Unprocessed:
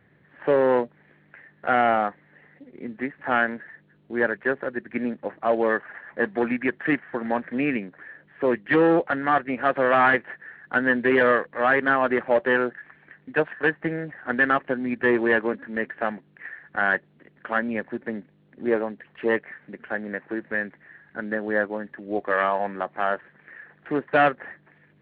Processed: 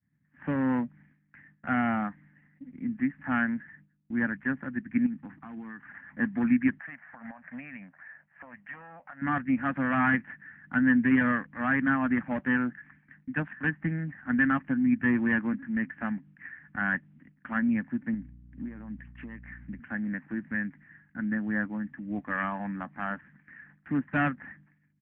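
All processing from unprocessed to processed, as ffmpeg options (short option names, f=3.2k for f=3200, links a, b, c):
-filter_complex "[0:a]asettb=1/sr,asplit=3[a][b][c];[a]atrim=end=5.064[d];[b]atrim=start=5.06:end=5.91,asetpts=PTS-STARTPTS,afade=t=in:d=0.004:c=qsin,afade=t=out:st=0.846:d=0.004:c=qsin,equalizer=f=580:w=5.3:g=-15,acompressor=threshold=-32dB:ratio=10:attack=3.2:release=140:knee=1:detection=peak[e];[c]atrim=start=5.906[f];[d][e]acrossfade=d=0.004:c1=hsin:c2=qsin[g];[g][f]acrossfade=d=0.004:c1=qsin:c2=hsin,asettb=1/sr,asplit=3[h][i][j];[h]atrim=end=6.794[k];[i]atrim=start=6.79:end=9.22,asetpts=PTS-STARTPTS,afade=t=in:d=0.004:c=qsin,afade=t=out:st=2.426:d=0.004:c=qsin,lowpass=f=2.8k:w=0.5412,lowpass=f=2.8k:w=1.3066,lowshelf=f=470:t=q:w=3:g=-11,acompressor=threshold=-32dB:ratio=10:attack=3.2:release=140:knee=1:detection=peak[l];[j]atrim=start=9.216[m];[k][l]acrossfade=d=0.004:c1=hsin:c2=qsin[n];[n][m]acrossfade=d=0.004:c1=qsin:c2=hsin,asettb=1/sr,asplit=3[o][p][q];[o]atrim=end=18.144[r];[p]atrim=start=18.14:end=19.8,asetpts=PTS-STARTPTS,afade=t=in:d=0.004:c=qsin,afade=t=out:st=1.656:d=0.004:c=qsin,agate=range=-33dB:threshold=-56dB:ratio=3:release=100:detection=peak,acompressor=threshold=-33dB:ratio=10:attack=3.2:release=140:knee=1:detection=peak,aeval=exprs='val(0)+0.00282*(sin(2*PI*60*n/s)+sin(2*PI*2*60*n/s)/2+sin(2*PI*3*60*n/s)/3+sin(2*PI*4*60*n/s)/4+sin(2*PI*5*60*n/s)/5)':c=same[s];[q]atrim=start=19.796[t];[r][s]acrossfade=d=0.004:c1=hsin:c2=qsin[u];[u][t]acrossfade=d=0.004:c1=qsin:c2=hsin,lowpass=f=2.5k:w=0.5412,lowpass=f=2.5k:w=1.3066,agate=range=-33dB:threshold=-48dB:ratio=3:detection=peak,firequalizer=gain_entry='entry(270,0);entry(390,-26);entry(860,-14);entry(1800,-9)':delay=0.05:min_phase=1,volume=4dB"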